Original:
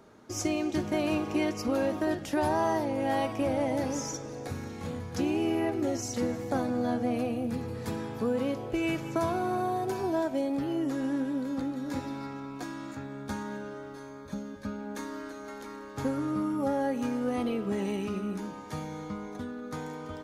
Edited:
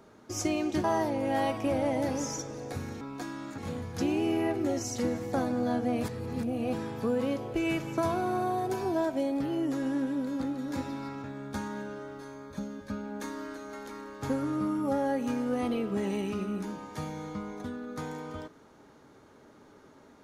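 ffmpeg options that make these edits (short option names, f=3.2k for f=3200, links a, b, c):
-filter_complex "[0:a]asplit=7[a][b][c][d][e][f][g];[a]atrim=end=0.842[h];[b]atrim=start=2.588:end=4.762[i];[c]atrim=start=12.418:end=12.992[j];[d]atrim=start=4.758:end=7.212[k];[e]atrim=start=7.208:end=7.912,asetpts=PTS-STARTPTS,areverse[l];[f]atrim=start=7.908:end=12.422[m];[g]atrim=start=12.988[n];[h][i]acrossfade=d=0.004:c1=hsin:c2=hsin[o];[o][j]acrossfade=d=0.004:c1=hsin:c2=hsin[p];[p][k]acrossfade=d=0.004:c1=hsin:c2=hsin[q];[q][l]acrossfade=d=0.004:c1=hsin:c2=hsin[r];[r][m]acrossfade=d=0.004:c1=hsin:c2=hsin[s];[s][n]acrossfade=d=0.004:c1=hsin:c2=hsin"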